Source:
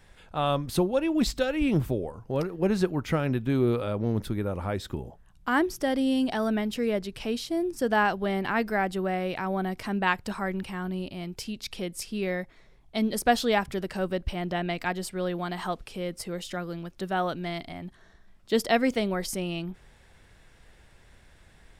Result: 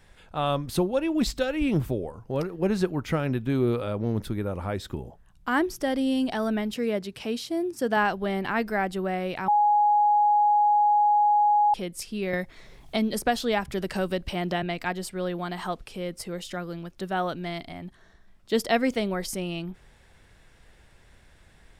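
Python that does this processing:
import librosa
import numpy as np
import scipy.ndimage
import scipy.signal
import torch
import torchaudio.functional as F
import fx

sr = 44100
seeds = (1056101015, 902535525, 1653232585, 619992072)

y = fx.highpass(x, sr, hz=88.0, slope=12, at=(6.74, 7.97))
y = fx.band_squash(y, sr, depth_pct=70, at=(12.33, 14.63))
y = fx.edit(y, sr, fx.bleep(start_s=9.48, length_s=2.26, hz=832.0, db=-17.0), tone=tone)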